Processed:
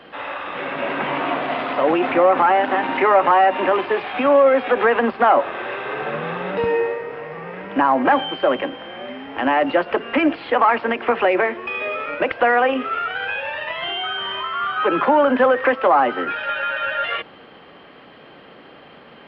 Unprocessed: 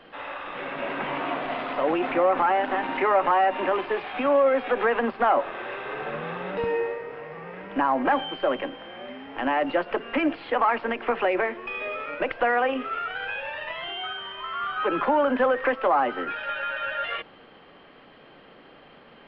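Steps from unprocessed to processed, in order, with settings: HPF 53 Hz; 13.82–14.48 fast leveller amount 70%; gain +6.5 dB

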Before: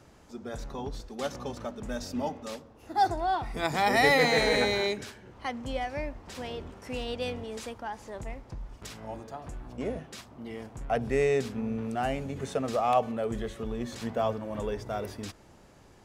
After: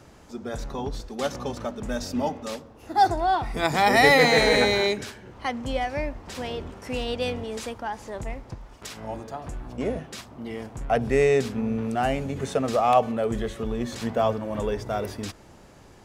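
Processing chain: 8.54–8.97 low shelf 220 Hz -9.5 dB; gain +5.5 dB

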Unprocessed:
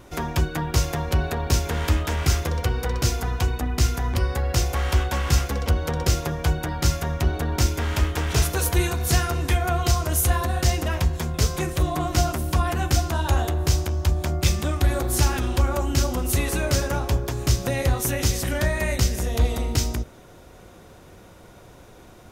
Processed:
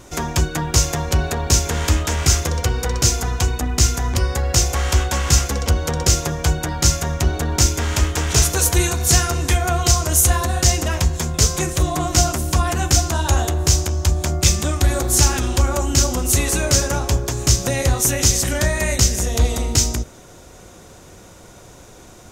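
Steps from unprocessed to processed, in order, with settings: bell 6900 Hz +10.5 dB 0.94 oct; gain +3.5 dB

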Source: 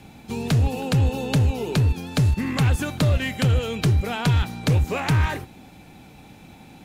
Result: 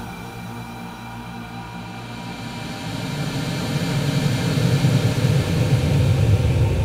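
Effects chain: delay with a stepping band-pass 0.152 s, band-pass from 390 Hz, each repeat 1.4 oct, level -6 dB; Paulstretch 27×, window 0.25 s, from 4.51

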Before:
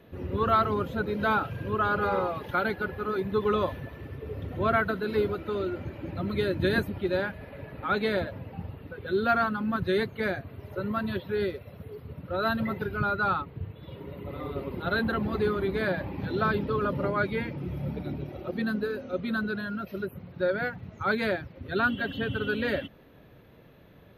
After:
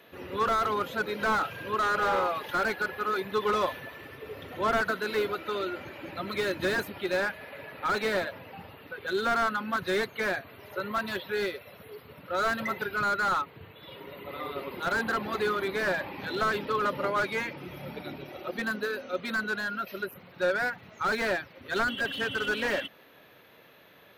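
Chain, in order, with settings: HPF 1400 Hz 6 dB/oct; slew limiter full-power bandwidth 28 Hz; gain +8.5 dB

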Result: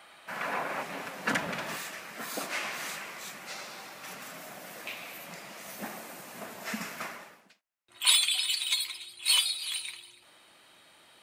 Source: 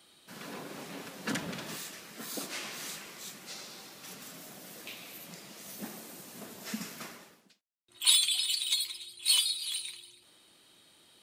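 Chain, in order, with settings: band shelf 1200 Hz +14.5 dB 2.5 oct, from 0.81 s +8.5 dB

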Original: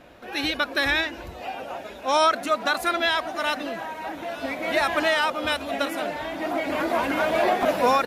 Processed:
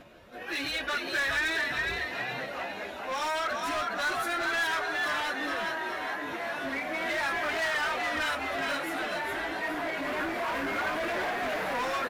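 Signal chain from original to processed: plain phase-vocoder stretch 1.5×; in parallel at +1 dB: compressor, threshold -34 dBFS, peak gain reduction 15 dB; on the sum: notch 790 Hz, Q 12; frequency-shifting echo 0.414 s, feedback 46%, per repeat +72 Hz, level -5 dB; overloaded stage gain 23.5 dB; dynamic EQ 1700 Hz, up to +7 dB, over -43 dBFS, Q 1.4; gain -7 dB

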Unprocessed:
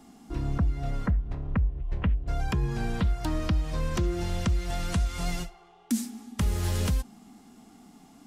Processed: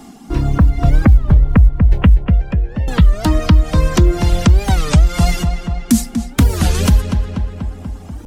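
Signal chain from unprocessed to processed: reverb removal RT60 1.7 s; 0.75–1.33 low shelf 200 Hz +9.5 dB; 2.25–2.9 vowel filter e; short-mantissa float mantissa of 6-bit; on a send: darkening echo 0.242 s, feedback 69%, low-pass 3600 Hz, level -8 dB; on the sum: maximiser +16 dB; record warp 33 1/3 rpm, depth 250 cents; gain -1 dB

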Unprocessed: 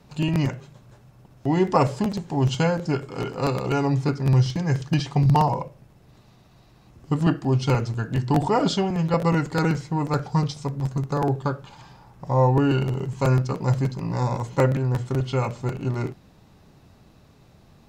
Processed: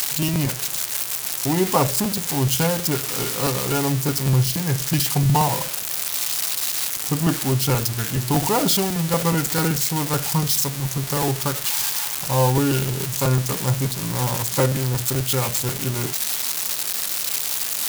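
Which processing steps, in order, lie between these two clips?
switching spikes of -11 dBFS; bit-crush 7-bit

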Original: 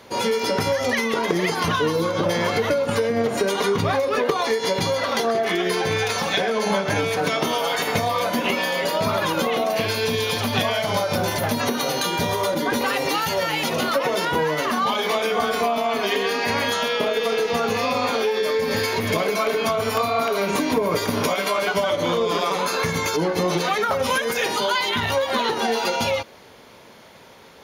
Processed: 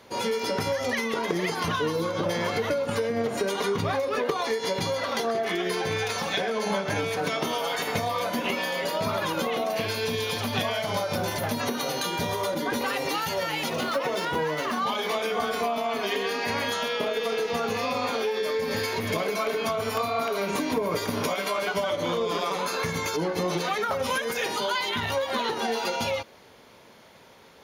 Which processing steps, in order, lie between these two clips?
13.7–14.84 median filter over 3 samples; gain -5.5 dB

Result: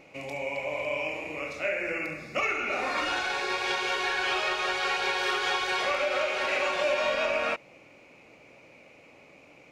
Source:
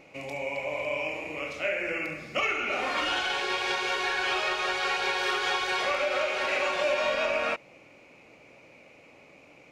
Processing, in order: 1.36–3.64 notch 3100 Hz, Q 5.5

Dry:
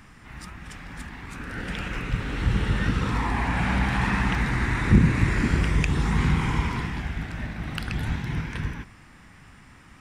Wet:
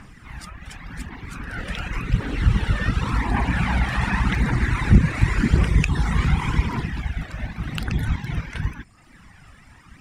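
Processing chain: reverb removal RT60 0.84 s; phaser 0.89 Hz, delay 1.8 ms, feedback 42%; wow and flutter 33 cents; gain +2.5 dB

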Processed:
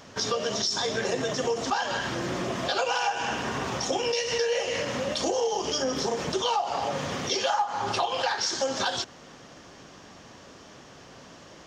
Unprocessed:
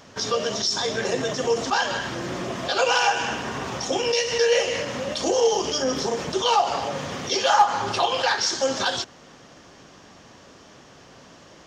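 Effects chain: dynamic EQ 790 Hz, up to +4 dB, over -30 dBFS; compressor 5:1, threshold -24 dBFS, peak gain reduction 14.5 dB

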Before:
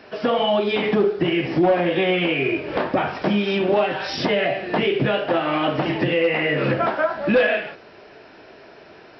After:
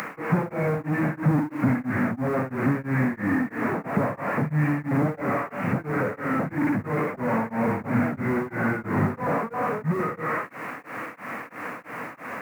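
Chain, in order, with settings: delta modulation 16 kbps, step -39 dBFS; HPF 160 Hz 24 dB/oct; bell 520 Hz -9.5 dB 0.84 oct; speed mistake 45 rpm record played at 33 rpm; tilt +1.5 dB/oct; in parallel at +0.5 dB: compressor, threshold -40 dBFS, peak gain reduction 14.5 dB; on the sum: added noise white -63 dBFS; upward compressor, threshold -40 dBFS; beating tremolo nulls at 3 Hz; gain +8 dB

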